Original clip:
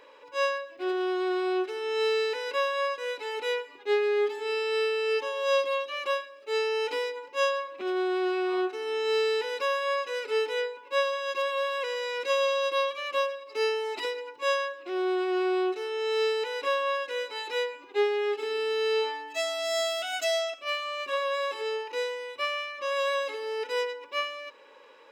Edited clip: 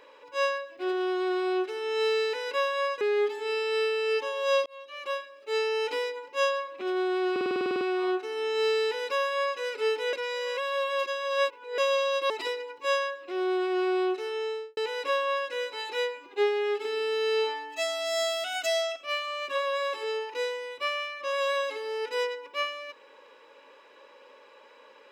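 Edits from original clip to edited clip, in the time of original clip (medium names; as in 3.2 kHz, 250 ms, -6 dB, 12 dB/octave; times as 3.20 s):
3.01–4.01 s: delete
5.66–6.66 s: fade in equal-power
8.31 s: stutter 0.05 s, 11 plays
10.63–12.28 s: reverse
12.80–13.88 s: delete
15.93–16.35 s: studio fade out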